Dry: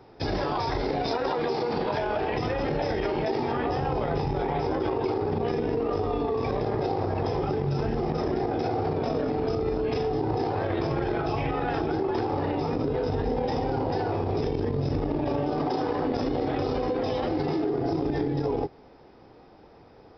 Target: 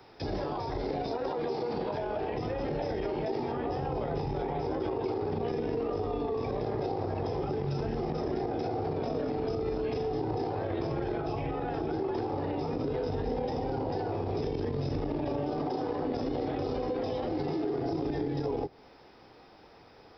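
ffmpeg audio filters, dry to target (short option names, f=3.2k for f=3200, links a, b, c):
-filter_complex "[0:a]tiltshelf=f=1.1k:g=-5.5,acrossover=split=190|770[a][b][c];[c]acompressor=threshold=-47dB:ratio=6[d];[a][b][d]amix=inputs=3:normalize=0"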